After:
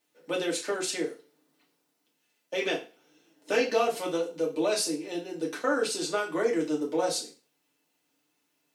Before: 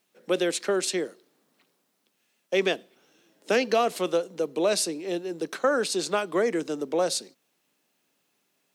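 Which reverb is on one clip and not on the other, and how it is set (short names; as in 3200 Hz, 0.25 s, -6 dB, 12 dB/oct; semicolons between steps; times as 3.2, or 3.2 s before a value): FDN reverb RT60 0.33 s, low-frequency decay 0.95×, high-frequency decay 1×, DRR -3.5 dB; gain -7.5 dB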